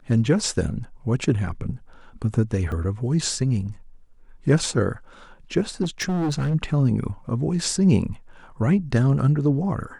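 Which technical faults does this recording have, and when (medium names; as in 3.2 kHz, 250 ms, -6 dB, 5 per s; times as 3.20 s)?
2.72 s: dropout 2.7 ms
5.82–6.55 s: clipped -20.5 dBFS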